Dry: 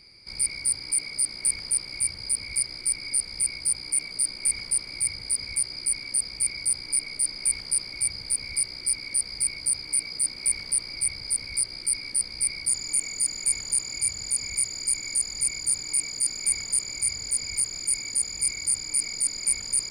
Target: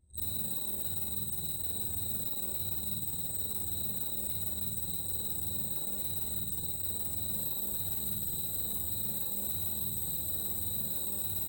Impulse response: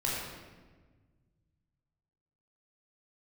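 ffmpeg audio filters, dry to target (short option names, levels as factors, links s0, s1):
-filter_complex "[0:a]afftfilt=real='re':imag='-im':win_size=8192:overlap=0.75,highpass=50,anlmdn=0.631,lowshelf=f=120:g=11,acrossover=split=670|4500[s0][s1][s2];[s0]acompressor=threshold=0.00398:ratio=4[s3];[s1]acompressor=threshold=0.002:ratio=4[s4];[s2]acompressor=threshold=0.0126:ratio=4[s5];[s3][s4][s5]amix=inputs=3:normalize=0,asoftclip=type=tanh:threshold=0.0158,asetrate=76440,aresample=44100,asplit=2[s6][s7];[s7]aecho=0:1:40|64:0.501|0.501[s8];[s6][s8]amix=inputs=2:normalize=0,volume=2.11"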